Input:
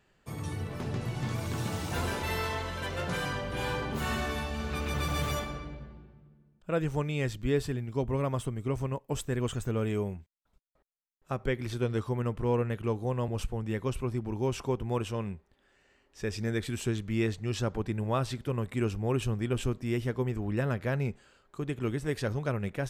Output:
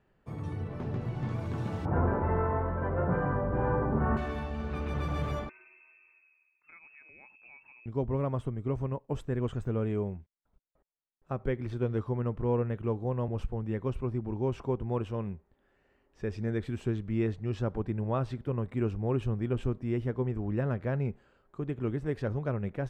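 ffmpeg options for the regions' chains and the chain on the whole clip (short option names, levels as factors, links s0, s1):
-filter_complex "[0:a]asettb=1/sr,asplit=3[s0][s1][s2];[s0]atrim=end=1.854[s3];[s1]atrim=start=1.85:end=4.17,asetpts=PTS-STARTPTS,afade=t=in:d=0.004:c=qsin,afade=t=out:st=2.316:d=0.004:c=qsin,lowpass=f=1500:w=0.5412,lowpass=f=1500:w=1.3066,acontrast=53[s4];[s2]atrim=start=4.166[s5];[s3][s4]acrossfade=d=0.004:c1=hsin:c2=qsin[s6];[s6][s5]acrossfade=d=0.004:c1=qsin:c2=hsin,asettb=1/sr,asplit=3[s7][s8][s9];[s7]atrim=end=5.494[s10];[s8]atrim=start=5.49:end=7.86,asetpts=PTS-STARTPTS,afade=t=in:d=0.004:c=qsin,afade=t=out:st=2.366:d=0.004:c=qsin,lowpass=f=2300:t=q:w=0.5098,lowpass=f=2300:t=q:w=0.6013,lowpass=f=2300:t=q:w=0.9,lowpass=f=2300:t=q:w=2.563,afreqshift=-2700,acompressor=threshold=0.00355:ratio=3:attack=3.2:release=140:knee=1:detection=peak[s11];[s9]atrim=start=7.856[s12];[s10][s11]acrossfade=d=0.004:c1=hsin:c2=qsin[s13];[s13][s12]acrossfade=d=0.004:c1=qsin:c2=hsin,lowpass=f=3100:p=1,highshelf=f=2100:g=-11.5"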